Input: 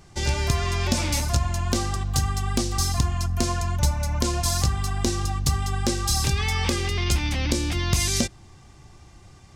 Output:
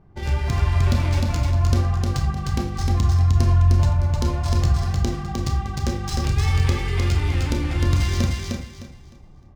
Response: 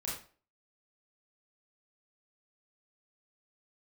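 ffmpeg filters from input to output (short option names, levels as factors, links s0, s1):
-filter_complex "[0:a]adynamicsmooth=sensitivity=3:basefreq=1100,asplit=2[s0][s1];[1:a]atrim=start_sample=2205,lowshelf=f=150:g=7.5[s2];[s1][s2]afir=irnorm=-1:irlink=0,volume=0.668[s3];[s0][s3]amix=inputs=2:normalize=0,flanger=delay=6.3:depth=3.2:regen=-73:speed=1.5:shape=sinusoidal,bandreject=f=50:t=h:w=6,bandreject=f=100:t=h:w=6,asplit=2[s4][s5];[s5]aecho=0:1:306|612|918|1224:0.708|0.191|0.0516|0.0139[s6];[s4][s6]amix=inputs=2:normalize=0,volume=0.841"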